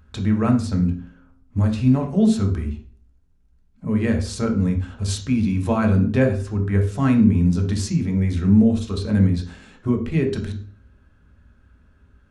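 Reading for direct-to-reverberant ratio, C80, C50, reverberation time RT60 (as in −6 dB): 2.5 dB, 13.5 dB, 8.5 dB, 0.45 s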